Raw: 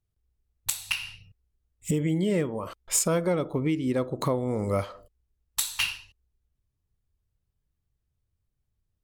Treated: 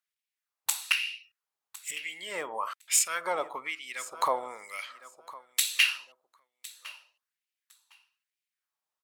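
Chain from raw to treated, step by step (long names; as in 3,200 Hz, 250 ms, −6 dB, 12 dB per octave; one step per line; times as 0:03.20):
repeating echo 1,058 ms, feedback 17%, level −18 dB
auto-filter high-pass sine 1.1 Hz 820–2,400 Hz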